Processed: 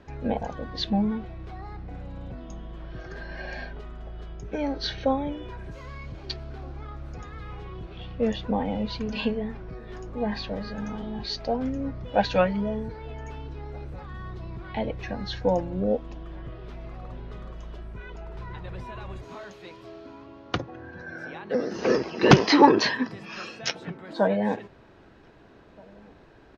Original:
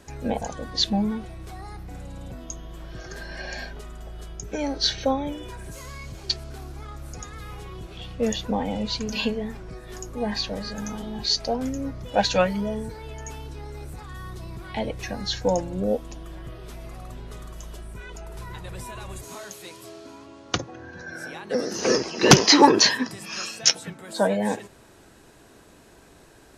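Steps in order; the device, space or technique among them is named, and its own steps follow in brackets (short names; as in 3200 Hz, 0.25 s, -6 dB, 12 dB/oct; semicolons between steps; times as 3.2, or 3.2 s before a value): shout across a valley (air absorption 260 m; outdoor echo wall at 270 m, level -27 dB)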